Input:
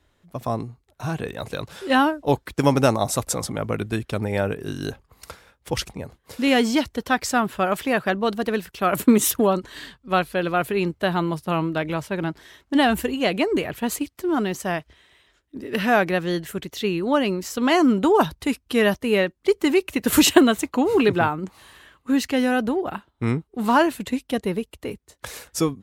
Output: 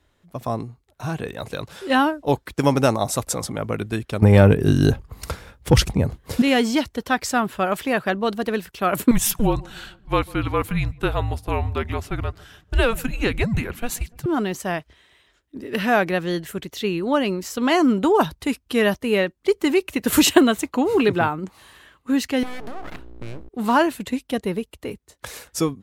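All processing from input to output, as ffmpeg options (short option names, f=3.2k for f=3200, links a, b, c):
-filter_complex "[0:a]asettb=1/sr,asplit=3[a][b][c];[a]atrim=end=4.224[d];[b]atrim=start=4.22:end=6.42,asetpts=PTS-STARTPTS,afade=t=in:d=0.004:c=qsin,afade=t=out:st=2.196:d=0.004:c=qsin,lowshelf=f=270:g=11.5,acontrast=82[e];[c]atrim=start=6.416[f];[d][e]acrossfade=d=0.004:c1=hsin:c2=qsin[g];[g][f]acrossfade=d=0.004:c1=qsin:c2=hsin,asettb=1/sr,asplit=3[h][i][j];[h]atrim=end=9.114[k];[i]atrim=start=9.11:end=14.26,asetpts=PTS-STARTPTS,afade=t=in:d=0.004:c=qsin,afade=t=out:st=5.146:d=0.004:c=qsin,afreqshift=-230,asplit=2[l][m];[m]adelay=146,lowpass=f=990:p=1,volume=-22dB,asplit=2[n][o];[o]adelay=146,lowpass=f=990:p=1,volume=0.53,asplit=2[p][q];[q]adelay=146,lowpass=f=990:p=1,volume=0.53,asplit=2[r][s];[s]adelay=146,lowpass=f=990:p=1,volume=0.53[t];[l][n][p][r][t]amix=inputs=5:normalize=0,atrim=end_sample=227115[u];[j]atrim=start=14.256[v];[k][u]acrossfade=d=0.004:c1=hsin:c2=qsin[w];[w][v]acrossfade=d=0.004:c1=qsin:c2=hsin,asettb=1/sr,asplit=3[x][y][z];[x]atrim=end=22.434[aa];[y]atrim=start=22.43:end=23.49,asetpts=PTS-STARTPTS,afade=t=in:d=0.004:c=qsin,afade=t=out:st=1.056:d=0.004:c=qsin,aeval=exprs='val(0)+0.0141*(sin(2*PI*60*n/s)+sin(2*PI*2*60*n/s)/2+sin(2*PI*3*60*n/s)/3+sin(2*PI*4*60*n/s)/4+sin(2*PI*5*60*n/s)/5)':c=same,acompressor=threshold=-28dB:ratio=4:attack=3.2:release=140:knee=1:detection=peak,aeval=exprs='abs(val(0))':c=same[ab];[z]atrim=start=23.486[ac];[aa][ab]acrossfade=d=0.004:c1=hsin:c2=qsin[ad];[ad][ac]acrossfade=d=0.004:c1=qsin:c2=hsin"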